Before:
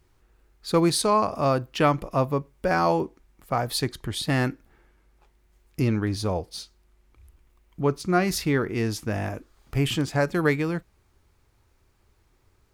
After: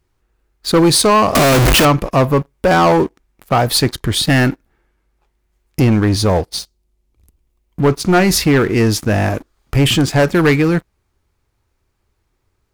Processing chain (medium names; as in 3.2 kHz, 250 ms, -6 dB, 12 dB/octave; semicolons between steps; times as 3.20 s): 1.35–1.85 s: one-bit comparator; 6.58–7.83 s: peaking EQ 1.5 kHz -14.5 dB -> -6.5 dB 1.7 oct; waveshaping leveller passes 3; trim +3 dB